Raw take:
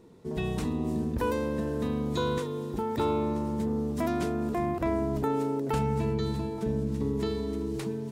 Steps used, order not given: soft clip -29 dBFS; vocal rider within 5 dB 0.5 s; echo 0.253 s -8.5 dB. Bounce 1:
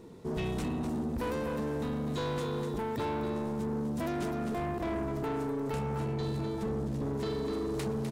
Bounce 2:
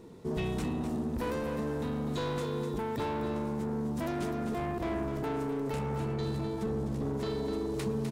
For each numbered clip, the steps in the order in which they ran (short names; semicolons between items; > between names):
echo > vocal rider > soft clip; soft clip > echo > vocal rider